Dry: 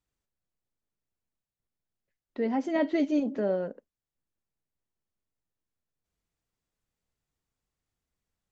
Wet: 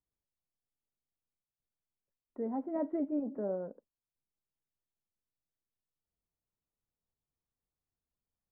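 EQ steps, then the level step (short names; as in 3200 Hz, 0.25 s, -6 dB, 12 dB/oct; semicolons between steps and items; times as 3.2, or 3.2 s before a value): LPF 1200 Hz 24 dB/oct; -7.5 dB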